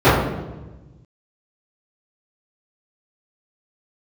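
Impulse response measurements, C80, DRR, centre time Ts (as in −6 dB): 4.0 dB, −18.0 dB, 68 ms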